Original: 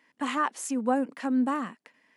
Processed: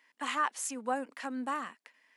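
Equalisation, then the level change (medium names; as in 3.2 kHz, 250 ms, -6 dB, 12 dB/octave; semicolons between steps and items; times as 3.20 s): high-pass 1.1 kHz 6 dB/octave; 0.0 dB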